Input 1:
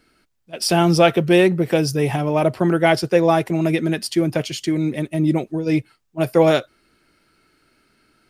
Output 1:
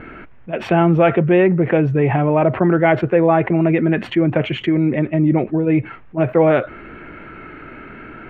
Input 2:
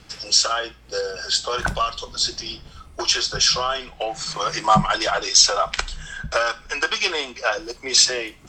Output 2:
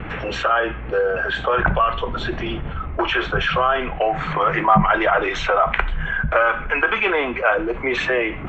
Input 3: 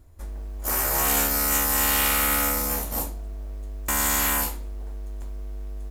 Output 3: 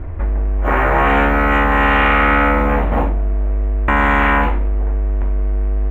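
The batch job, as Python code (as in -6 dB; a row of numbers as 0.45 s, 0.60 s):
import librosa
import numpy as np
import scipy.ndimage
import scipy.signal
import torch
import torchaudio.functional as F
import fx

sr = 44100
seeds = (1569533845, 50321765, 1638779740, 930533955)

y = fx.vibrato(x, sr, rate_hz=0.89, depth_cents=20.0)
y = scipy.signal.sosfilt(scipy.signal.cheby2(4, 40, 4600.0, 'lowpass', fs=sr, output='sos'), y)
y = fx.env_flatten(y, sr, amount_pct=50)
y = y * 10.0 ** (-1.5 / 20.0) / np.max(np.abs(y))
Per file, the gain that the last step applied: -0.5 dB, +0.5 dB, +13.0 dB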